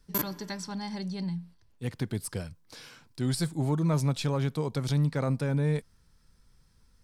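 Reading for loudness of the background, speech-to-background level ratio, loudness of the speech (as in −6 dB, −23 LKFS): −33.5 LKFS, 2.5 dB, −31.0 LKFS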